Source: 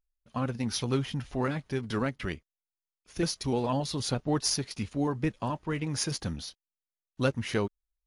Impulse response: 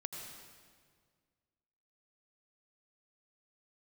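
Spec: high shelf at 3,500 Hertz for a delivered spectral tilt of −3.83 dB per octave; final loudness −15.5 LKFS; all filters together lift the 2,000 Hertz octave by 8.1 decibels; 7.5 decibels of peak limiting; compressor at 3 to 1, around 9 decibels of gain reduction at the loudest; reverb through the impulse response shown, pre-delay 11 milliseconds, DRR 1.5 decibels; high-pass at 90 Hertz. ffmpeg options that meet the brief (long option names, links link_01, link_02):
-filter_complex "[0:a]highpass=90,equalizer=frequency=2000:width_type=o:gain=8,highshelf=frequency=3500:gain=8,acompressor=threshold=-31dB:ratio=3,alimiter=level_in=0.5dB:limit=-24dB:level=0:latency=1,volume=-0.5dB,asplit=2[link_01][link_02];[1:a]atrim=start_sample=2205,adelay=11[link_03];[link_02][link_03]afir=irnorm=-1:irlink=0,volume=-0.5dB[link_04];[link_01][link_04]amix=inputs=2:normalize=0,volume=18.5dB"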